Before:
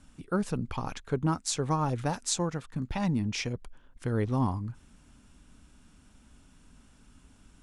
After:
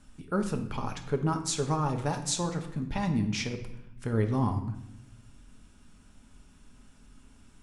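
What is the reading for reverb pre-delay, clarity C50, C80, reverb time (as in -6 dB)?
5 ms, 9.5 dB, 12.5 dB, 0.85 s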